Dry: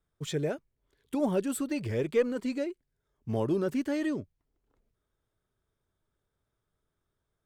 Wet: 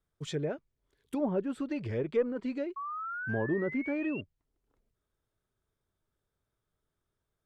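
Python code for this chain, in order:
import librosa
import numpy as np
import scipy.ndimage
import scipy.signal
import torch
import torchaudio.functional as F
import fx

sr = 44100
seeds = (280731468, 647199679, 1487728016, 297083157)

y = fx.spec_paint(x, sr, seeds[0], shape='rise', start_s=2.76, length_s=1.45, low_hz=1100.0, high_hz=2800.0, level_db=-35.0)
y = fx.env_lowpass_down(y, sr, base_hz=1500.0, full_db=-24.5)
y = y * librosa.db_to_amplitude(-2.5)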